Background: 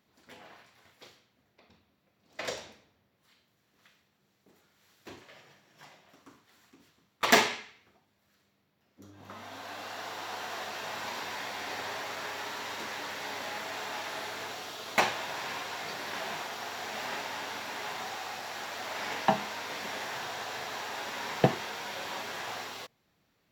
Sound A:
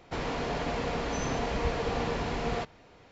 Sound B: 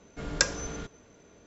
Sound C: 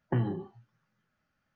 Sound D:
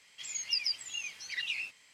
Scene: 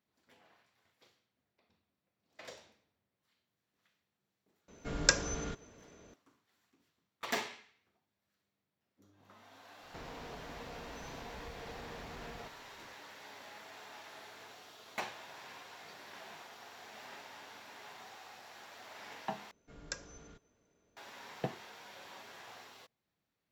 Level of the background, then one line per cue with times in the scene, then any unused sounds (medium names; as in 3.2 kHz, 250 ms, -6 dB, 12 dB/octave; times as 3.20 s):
background -14 dB
4.68 s: add B -1.5 dB
9.83 s: add A -7.5 dB + compression, threshold -37 dBFS
19.51 s: replace with B -17.5 dB
not used: C, D